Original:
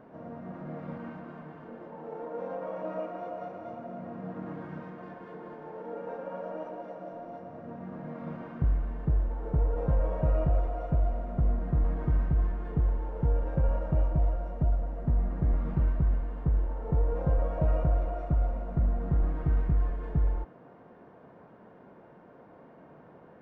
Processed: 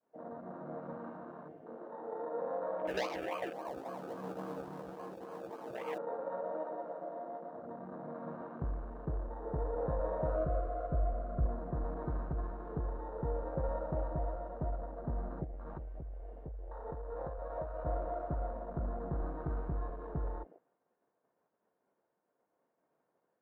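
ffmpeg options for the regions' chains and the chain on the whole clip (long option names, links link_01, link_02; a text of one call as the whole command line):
ffmpeg -i in.wav -filter_complex "[0:a]asettb=1/sr,asplit=3[link_01][link_02][link_03];[link_01]atrim=end=2.874[link_04];[link_02]atrim=start=2.87:end=5.98,asetpts=PTS-STARTPTS,afade=type=in:duration=0.004:curve=qsin,afade=type=out:start_time=3.106:duration=0.004:curve=qsin,acrusher=samples=34:mix=1:aa=0.000001:lfo=1:lforange=20.4:lforate=3.6,bandreject=frequency=1400:width=11,asplit=2[link_05][link_06];[link_06]adelay=15,volume=-3dB[link_07];[link_05][link_07]amix=inputs=2:normalize=0,atrim=end_sample=137151[link_08];[link_03]atrim=start=5.976[link_09];[link_04][link_08]acrossfade=duration=0.004:curve1=hsin:curve2=qsin[link_10];[link_10][link_09]acrossfade=duration=0.004:curve1=qsin:curve2=hsin,asettb=1/sr,asplit=3[link_11][link_12][link_13];[link_11]atrim=end=10.364[link_14];[link_12]atrim=start=10.36:end=11.46,asetpts=PTS-STARTPTS,afade=type=in:duration=0.004:curve=qsin,afade=type=out:start_time=1.096:duration=0.004:curve=qsin,asubboost=boost=5:cutoff=150,asuperstop=centerf=860:order=12:qfactor=3.4[link_15];[link_13]atrim=start=11.456[link_16];[link_14][link_15]acrossfade=duration=0.004:curve1=hsin:curve2=qsin[link_17];[link_17][link_16]acrossfade=duration=0.004:curve1=qsin:curve2=hsin,asettb=1/sr,asplit=3[link_18][link_19][link_20];[link_18]atrim=end=15.444[link_21];[link_19]atrim=start=15.44:end=17.86,asetpts=PTS-STARTPTS,afade=type=in:duration=0.004:curve=qsin,afade=type=out:start_time=2.416:duration=0.004:curve=qsin,equalizer=frequency=210:width=0.72:gain=-7.5,acompressor=threshold=-30dB:ratio=4:attack=3.2:release=140:knee=1:detection=peak[link_22];[link_20]atrim=start=17.856[link_23];[link_21][link_22]acrossfade=duration=0.004:curve1=hsin:curve2=qsin[link_24];[link_24][link_23]acrossfade=duration=0.004:curve1=qsin:curve2=hsin,agate=range=-33dB:threshold=-45dB:ratio=3:detection=peak,bass=frequency=250:gain=-12,treble=frequency=4000:gain=-1,afwtdn=0.00631" out.wav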